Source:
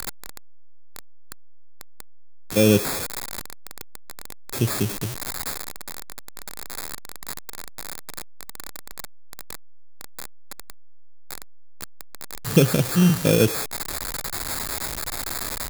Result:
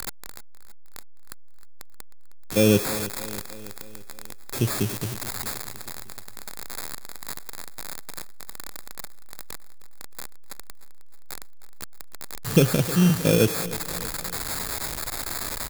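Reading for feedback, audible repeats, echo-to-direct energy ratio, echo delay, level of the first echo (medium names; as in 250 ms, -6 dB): 57%, 4, -14.5 dB, 312 ms, -16.0 dB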